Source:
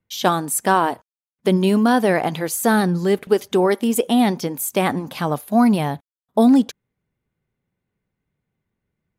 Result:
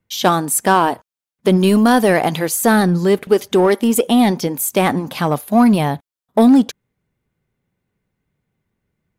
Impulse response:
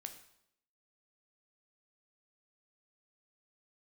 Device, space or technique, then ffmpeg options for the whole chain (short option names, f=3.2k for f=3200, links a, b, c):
parallel distortion: -filter_complex "[0:a]asettb=1/sr,asplit=3[a][b][c];[a]atrim=end=1.594[d];[b]atrim=start=1.59:end=2.46,asetpts=PTS-STARTPTS,afade=t=in:d=0.004:c=qsin,afade=t=out:st=0.866:d=0.004:c=qsin,highshelf=f=4.6k:g=5.5[e];[c]atrim=start=2.456[f];[d][e]acrossfade=d=0.004:c1=hsin:c2=qsin[g];[g][f]acrossfade=d=0.004:c1=qsin:c2=hsin,asplit=2[h][i];[i]asoftclip=type=hard:threshold=-16dB,volume=-5.5dB[j];[h][j]amix=inputs=2:normalize=0,volume=1dB"